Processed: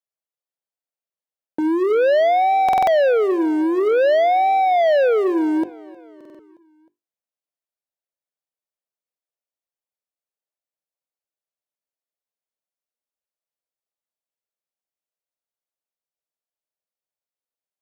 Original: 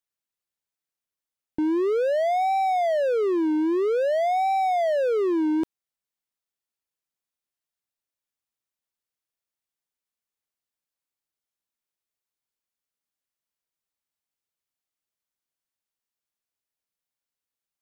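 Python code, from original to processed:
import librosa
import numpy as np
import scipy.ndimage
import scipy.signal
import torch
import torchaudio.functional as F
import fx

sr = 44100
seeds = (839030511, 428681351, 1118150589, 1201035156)

p1 = scipy.signal.sosfilt(scipy.signal.butter(2, 120.0, 'highpass', fs=sr, output='sos'), x)
p2 = fx.peak_eq(p1, sr, hz=590.0, db=11.0, octaves=1.1)
p3 = fx.hum_notches(p2, sr, base_hz=50, count=8)
p4 = fx.leveller(p3, sr, passes=2)
p5 = p4 + fx.echo_feedback(p4, sr, ms=311, feedback_pct=58, wet_db=-22.5, dry=0)
p6 = fx.buffer_glitch(p5, sr, at_s=(2.64, 6.16, 15.38), block=2048, repeats=4)
y = p6 * 10.0 ** (-4.5 / 20.0)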